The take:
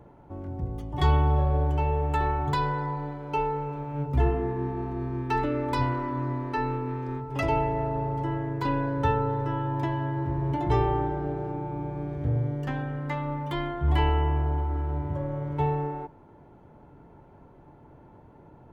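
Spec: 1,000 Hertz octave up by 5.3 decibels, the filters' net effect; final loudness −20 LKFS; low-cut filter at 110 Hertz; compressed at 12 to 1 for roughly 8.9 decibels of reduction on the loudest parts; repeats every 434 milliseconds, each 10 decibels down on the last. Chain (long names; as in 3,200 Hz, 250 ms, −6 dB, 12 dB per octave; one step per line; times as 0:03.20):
high-pass filter 110 Hz
parametric band 1,000 Hz +6 dB
downward compressor 12 to 1, threshold −27 dBFS
repeating echo 434 ms, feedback 32%, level −10 dB
level +12 dB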